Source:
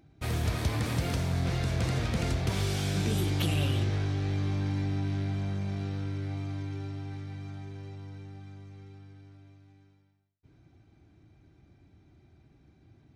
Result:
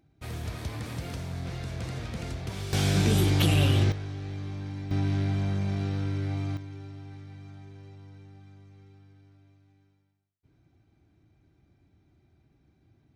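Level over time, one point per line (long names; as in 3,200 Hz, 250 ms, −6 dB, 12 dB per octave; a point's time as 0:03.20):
−6 dB
from 0:02.73 +5.5 dB
from 0:03.92 −6 dB
from 0:04.91 +4 dB
from 0:06.57 −5 dB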